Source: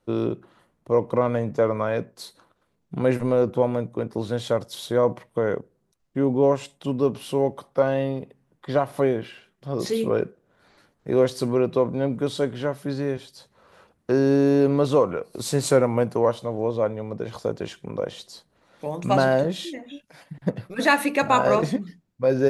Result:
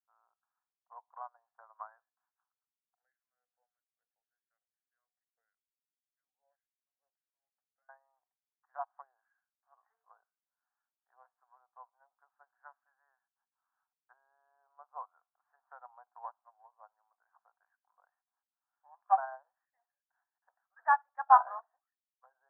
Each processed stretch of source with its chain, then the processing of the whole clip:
2.95–7.89 s: peaking EQ 370 Hz -11 dB 0.4 oct + talking filter e-i 1.7 Hz
whole clip: low-pass that closes with the level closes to 970 Hz, closed at -18.5 dBFS; Chebyshev band-pass 730–1700 Hz, order 4; upward expansion 2.5:1, over -43 dBFS; trim +5 dB

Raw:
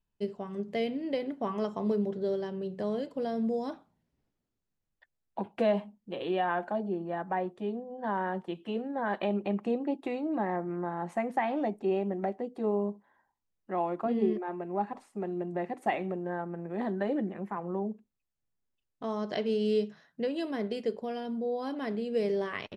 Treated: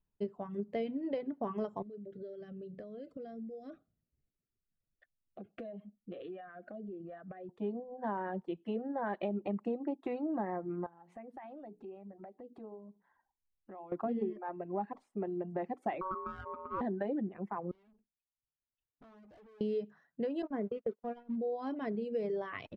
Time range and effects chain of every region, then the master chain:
1.82–7.49 s: compression 10:1, threshold -39 dBFS + Butterworth band-stop 920 Hz, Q 2
10.86–13.92 s: hum notches 60/120/180/240/300/360/420/480 Hz + compression 3:1, threshold -49 dBFS
16.01–16.81 s: median filter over 41 samples + ring modulator 750 Hz + peaking EQ 1.2 kHz +11 dB 0.32 oct
17.71–19.61 s: compression 3:1, threshold -40 dBFS + valve stage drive 55 dB, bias 0.5
20.42–21.36 s: zero-crossing glitches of -31.5 dBFS + low-pass 1.8 kHz + gate -36 dBFS, range -33 dB
whole clip: reverb removal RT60 1 s; low-pass 1.2 kHz 6 dB/octave; compression, threshold -31 dBFS

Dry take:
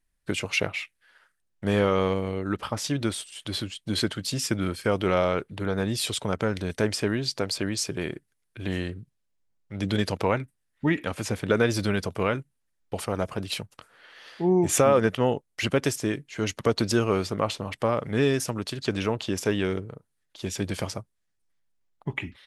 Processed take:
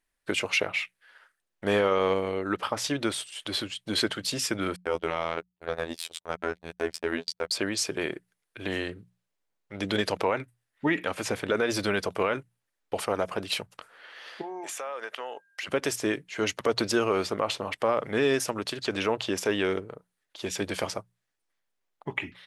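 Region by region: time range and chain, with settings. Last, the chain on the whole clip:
4.76–7.51 s: treble shelf 4 kHz +3 dB + robot voice 82.9 Hz + gate -31 dBFS, range -57 dB
14.41–15.67 s: high-pass 690 Hz + compression 10:1, threshold -34 dBFS + whistle 1.6 kHz -67 dBFS
whole clip: tone controls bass -13 dB, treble -4 dB; hum notches 60/120/180 Hz; peak limiter -17.5 dBFS; trim +3.5 dB

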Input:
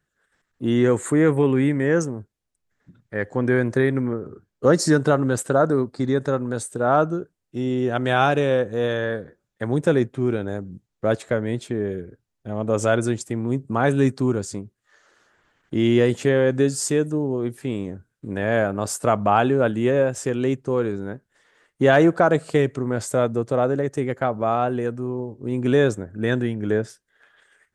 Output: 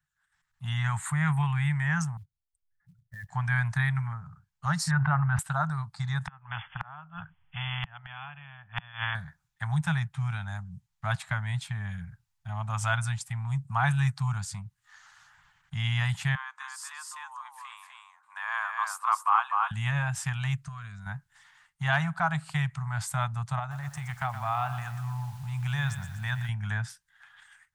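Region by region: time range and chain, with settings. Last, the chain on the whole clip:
2.17–3.29 s: spectral contrast enhancement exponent 2 + level held to a coarse grid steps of 11 dB + short-mantissa float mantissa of 4-bit
4.91–5.39 s: low-pass 2.2 kHz 24 dB/octave + hum notches 60/120/180/240/300/360/420/480/540 Hz + level flattener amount 70%
6.27–9.15 s: brick-wall FIR low-pass 3.5 kHz + inverted gate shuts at -14 dBFS, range -33 dB + spectrum-flattening compressor 2:1
16.35–19.71 s: ladder high-pass 1 kHz, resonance 75% + delay 251 ms -3.5 dB
20.56–21.06 s: compression 2.5:1, threshold -34 dBFS + Butterworth band-stop 860 Hz, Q 3.3
23.59–26.49 s: compression 1.5:1, threshold -35 dBFS + bit-crushed delay 120 ms, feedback 55%, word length 8-bit, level -11.5 dB
whole clip: dynamic bell 6.7 kHz, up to -6 dB, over -49 dBFS, Q 1.5; level rider; elliptic band-stop 160–830 Hz, stop band 40 dB; trim -6.5 dB

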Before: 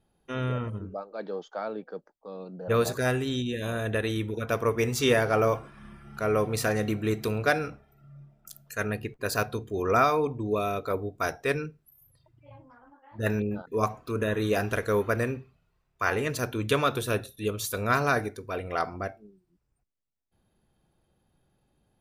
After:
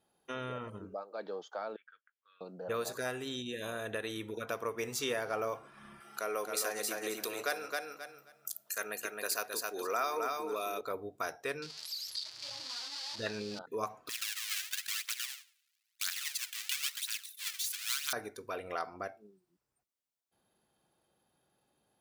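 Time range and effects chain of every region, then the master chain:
1.76–2.41 s: elliptic band-pass 1.4–3.3 kHz + compression 1.5:1, threshold -58 dBFS
6.00–10.81 s: high-pass 310 Hz + treble shelf 4 kHz +9.5 dB + feedback delay 265 ms, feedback 16%, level -5 dB
11.62–13.59 s: zero-crossing glitches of -28.5 dBFS + resonant low-pass 4.6 kHz, resonance Q 5.2
14.09–18.13 s: square wave that keeps the level + inverse Chebyshev high-pass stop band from 340 Hz, stop band 80 dB + phaser 1 Hz, delay 2.7 ms, feedback 59%
whole clip: high-pass 640 Hz 6 dB/octave; peaking EQ 2.2 kHz -3 dB 1.4 oct; compression 2:1, threshold -41 dBFS; trim +2 dB

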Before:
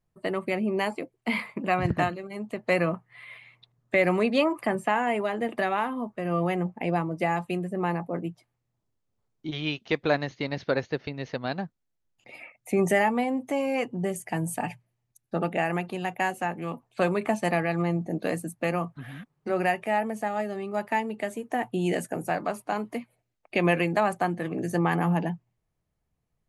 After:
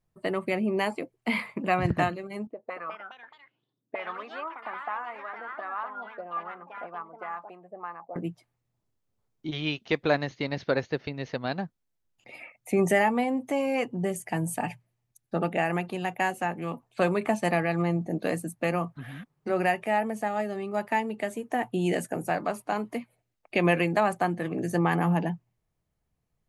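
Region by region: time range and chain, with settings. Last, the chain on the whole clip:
2.47–8.16 s: auto-wah 270–1200 Hz, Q 4.4, up, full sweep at -23.5 dBFS + ever faster or slower copies 241 ms, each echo +3 st, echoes 3, each echo -6 dB
whole clip: none

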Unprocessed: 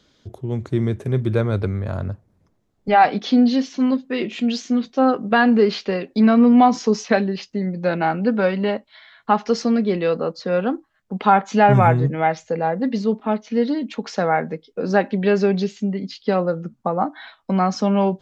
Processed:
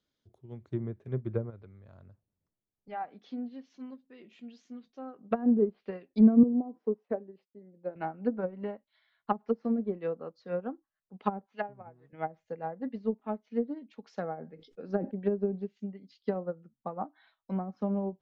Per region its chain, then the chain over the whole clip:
1.50–5.21 s: dynamic bell 5.3 kHz, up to -4 dB, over -37 dBFS, Q 0.7 + compression 1.5:1, threshold -31 dBFS
6.43–7.96 s: band-pass filter 420 Hz, Q 1.2 + expander -48 dBFS
11.46–12.13 s: high-pass 210 Hz 6 dB/octave + tilt shelf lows -8 dB, about 690 Hz + upward expansion, over -24 dBFS
14.21–15.19 s: band-stop 1 kHz, Q 7.5 + decay stretcher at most 75 dB/s
whole clip: low-pass that closes with the level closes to 440 Hz, closed at -13 dBFS; upward expansion 2.5:1, over -26 dBFS; trim -3 dB

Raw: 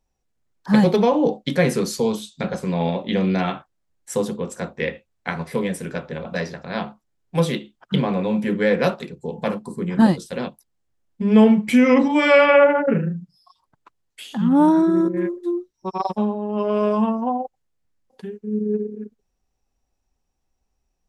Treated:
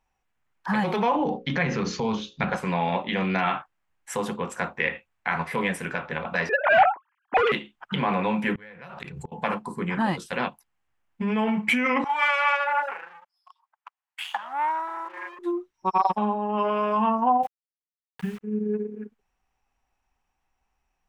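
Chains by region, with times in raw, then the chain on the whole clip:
1.16–2.50 s: steep low-pass 6.7 kHz 96 dB/octave + bass shelf 210 Hz +12 dB + hum notches 60/120/180/240/300/360/420/480/540 Hz
6.49–7.52 s: formants replaced by sine waves + low-pass 1.8 kHz 6 dB/octave + overdrive pedal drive 26 dB, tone 1.4 kHz, clips at -7.5 dBFS
8.55–9.32 s: resonant low shelf 180 Hz +9 dB, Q 1.5 + inverted gate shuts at -20 dBFS, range -28 dB + swell ahead of each attack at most 31 dB/s
12.04–15.39 s: waveshaping leveller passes 2 + compression 10:1, threshold -18 dBFS + ladder high-pass 620 Hz, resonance 30%
17.43–18.41 s: resonant low shelf 220 Hz +13.5 dB, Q 1.5 + word length cut 8-bit, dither none
whole clip: peak limiter -15.5 dBFS; high-order bell 1.5 kHz +11.5 dB 2.3 oct; trim -4 dB

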